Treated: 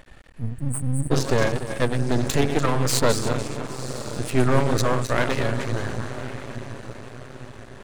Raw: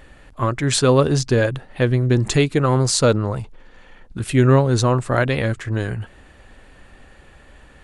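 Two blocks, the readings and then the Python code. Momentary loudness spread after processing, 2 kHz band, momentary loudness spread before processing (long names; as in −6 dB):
17 LU, −2.5 dB, 12 LU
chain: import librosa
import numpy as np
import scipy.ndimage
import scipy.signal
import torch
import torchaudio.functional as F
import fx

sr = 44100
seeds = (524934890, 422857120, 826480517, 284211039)

y = fx.reverse_delay_fb(x, sr, ms=145, feedback_pct=56, wet_db=-8.0)
y = fx.spec_repair(y, sr, seeds[0], start_s=0.36, length_s=0.72, low_hz=210.0, high_hz=8000.0, source='before')
y = fx.echo_diffused(y, sr, ms=1017, feedback_pct=44, wet_db=-12.5)
y = np.maximum(y, 0.0)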